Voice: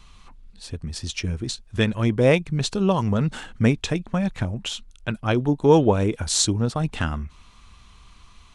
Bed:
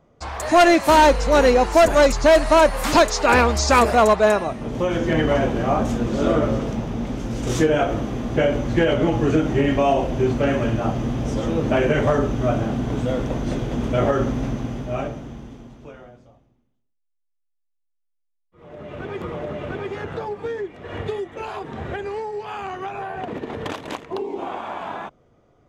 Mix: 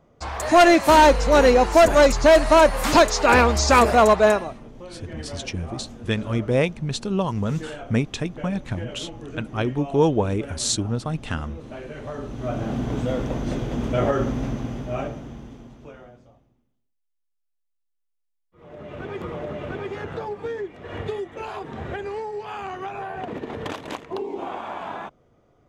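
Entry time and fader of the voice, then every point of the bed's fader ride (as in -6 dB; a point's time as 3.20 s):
4.30 s, -3.0 dB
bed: 4.30 s 0 dB
4.75 s -18 dB
11.95 s -18 dB
12.76 s -2 dB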